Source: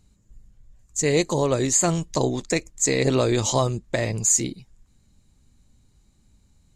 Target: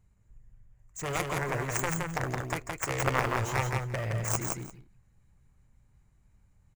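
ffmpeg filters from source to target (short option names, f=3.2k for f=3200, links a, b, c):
-filter_complex "[0:a]aeval=exprs='0.447*(cos(1*acos(clip(val(0)/0.447,-1,1)))-cos(1*PI/2))+0.2*(cos(3*acos(clip(val(0)/0.447,-1,1)))-cos(3*PI/2))':c=same,asplit=2[a][b];[b]acrusher=samples=14:mix=1:aa=0.000001:lfo=1:lforange=22.4:lforate=2.8,volume=-8dB[c];[a][c]amix=inputs=2:normalize=0,equalizer=f=125:t=o:w=1:g=5,equalizer=f=250:t=o:w=1:g=-8,equalizer=f=1k:t=o:w=1:g=3,equalizer=f=2k:t=o:w=1:g=6,equalizer=f=4k:t=o:w=1:g=-11,equalizer=f=8k:t=o:w=1:g=-3,aecho=1:1:168|344:0.668|0.1"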